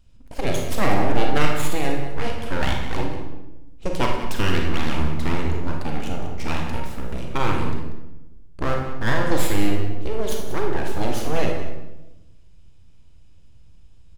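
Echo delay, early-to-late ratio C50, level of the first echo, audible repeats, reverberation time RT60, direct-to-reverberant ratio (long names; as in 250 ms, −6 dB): 189 ms, 2.5 dB, −12.5 dB, 1, 1.0 s, 0.5 dB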